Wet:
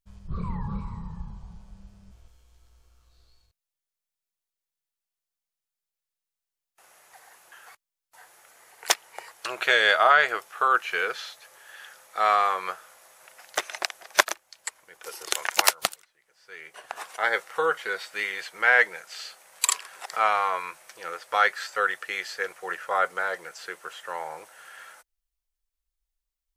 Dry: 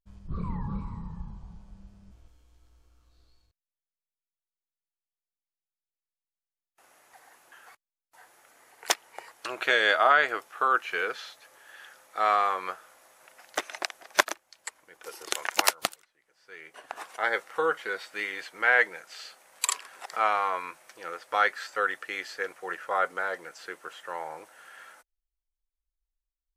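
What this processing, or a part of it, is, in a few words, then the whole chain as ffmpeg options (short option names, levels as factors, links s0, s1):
exciter from parts: -filter_complex "[0:a]equalizer=f=280:w=4.1:g=-11.5,asplit=2[s0][s1];[s1]highpass=f=3700:p=1,asoftclip=type=tanh:threshold=0.106,volume=0.596[s2];[s0][s2]amix=inputs=2:normalize=0,volume=1.26"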